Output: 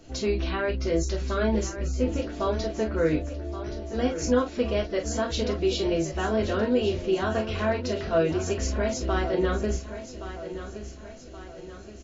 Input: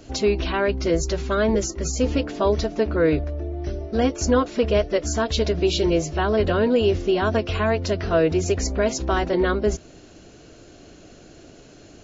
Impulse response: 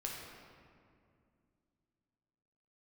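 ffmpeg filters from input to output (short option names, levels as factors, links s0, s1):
-filter_complex "[0:a]asplit=3[s0][s1][s2];[s0]afade=t=out:st=1.67:d=0.02[s3];[s1]lowpass=f=2100:p=1,afade=t=in:st=1.67:d=0.02,afade=t=out:st=2.31:d=0.02[s4];[s2]afade=t=in:st=2.31:d=0.02[s5];[s3][s4][s5]amix=inputs=3:normalize=0,aecho=1:1:1123|2246|3369|4492|5615:0.251|0.121|0.0579|0.0278|0.0133[s6];[1:a]atrim=start_sample=2205,afade=t=out:st=0.13:d=0.01,atrim=end_sample=6174,asetrate=66150,aresample=44100[s7];[s6][s7]afir=irnorm=-1:irlink=0"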